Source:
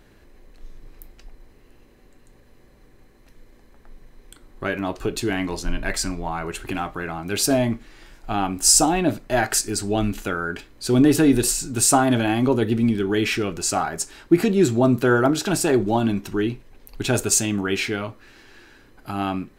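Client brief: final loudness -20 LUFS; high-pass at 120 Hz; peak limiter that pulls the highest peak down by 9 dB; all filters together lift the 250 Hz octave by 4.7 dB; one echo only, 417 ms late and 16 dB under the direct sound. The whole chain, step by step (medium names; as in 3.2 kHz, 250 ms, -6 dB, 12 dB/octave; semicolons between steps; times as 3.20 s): high-pass 120 Hz; peaking EQ 250 Hz +6 dB; peak limiter -10 dBFS; delay 417 ms -16 dB; trim +1.5 dB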